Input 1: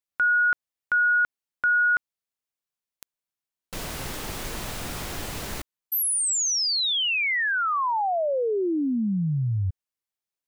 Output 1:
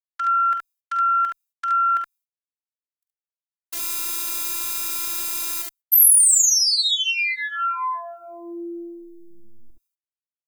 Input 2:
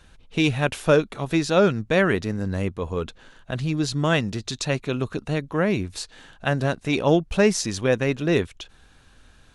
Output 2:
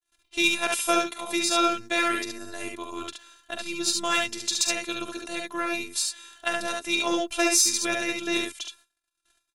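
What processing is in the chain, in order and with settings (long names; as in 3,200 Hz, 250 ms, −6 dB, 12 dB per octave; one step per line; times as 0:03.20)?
harmonic generator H 3 −35 dB, 6 −30 dB, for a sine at −4.5 dBFS
noise gate −49 dBFS, range −49 dB
RIAA equalisation recording
phases set to zero 341 Hz
on a send: ambience of single reflections 46 ms −9.5 dB, 71 ms −3.5 dB
on the sum: level −1 dB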